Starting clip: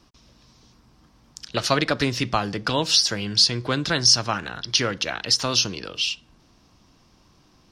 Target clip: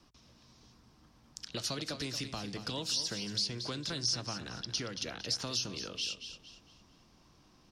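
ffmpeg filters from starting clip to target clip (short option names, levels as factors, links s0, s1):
-filter_complex "[0:a]bandreject=f=50:t=h:w=6,bandreject=f=100:t=h:w=6,acrossover=split=480|3600[s0][s1][s2];[s0]acompressor=threshold=0.02:ratio=4[s3];[s1]acompressor=threshold=0.0112:ratio=4[s4];[s2]acompressor=threshold=0.0501:ratio=4[s5];[s3][s4][s5]amix=inputs=3:normalize=0,aecho=1:1:228|456|684|912:0.282|0.101|0.0365|0.0131,acrossover=split=560|4500[s6][s7][s8];[s7]alimiter=level_in=1.19:limit=0.0631:level=0:latency=1:release=14,volume=0.841[s9];[s6][s9][s8]amix=inputs=3:normalize=0,volume=0.501"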